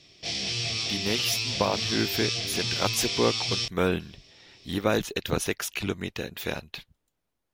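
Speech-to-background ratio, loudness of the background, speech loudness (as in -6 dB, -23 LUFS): -1.5 dB, -28.0 LUFS, -29.5 LUFS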